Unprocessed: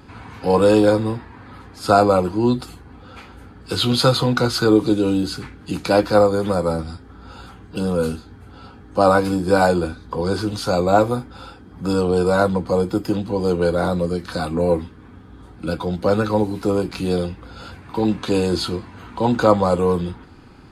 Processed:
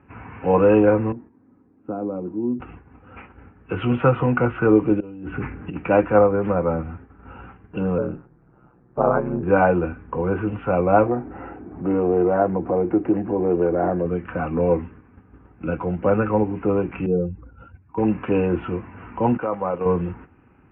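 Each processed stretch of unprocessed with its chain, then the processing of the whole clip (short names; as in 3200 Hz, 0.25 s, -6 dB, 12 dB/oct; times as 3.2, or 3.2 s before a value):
1.12–2.6 compressor 1.5:1, threshold -20 dBFS + band-pass 270 Hz, Q 2
5–5.76 negative-ratio compressor -30 dBFS + air absorption 210 m
7.98–9.43 LPF 1300 Hz + ring modulator 63 Hz
11.06–14.06 compressor 1.5:1, threshold -33 dBFS + small resonant body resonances 350/670/3900 Hz, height 12 dB, ringing for 20 ms + decimation joined by straight lines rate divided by 8×
17.06–17.98 spectral contrast raised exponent 1.8 + three-band expander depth 40%
19.37–19.86 HPF 300 Hz 6 dB/oct + level quantiser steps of 11 dB
whole clip: HPF 40 Hz 12 dB/oct; gate -40 dBFS, range -8 dB; steep low-pass 2800 Hz 96 dB/oct; gain -1 dB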